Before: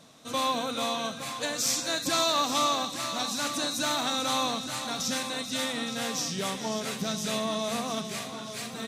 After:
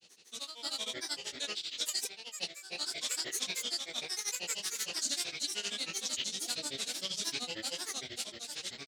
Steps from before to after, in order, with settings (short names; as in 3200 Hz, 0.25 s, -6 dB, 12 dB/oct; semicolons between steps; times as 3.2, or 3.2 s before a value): low shelf 280 Hz -9 dB; Schroeder reverb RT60 3 s, combs from 28 ms, DRR 9.5 dB; negative-ratio compressor -31 dBFS, ratio -0.5; grains, grains 13/s, pitch spread up and down by 12 st; graphic EQ 125/1000/4000/8000 Hz -9/-9/+9/+8 dB; gain -7.5 dB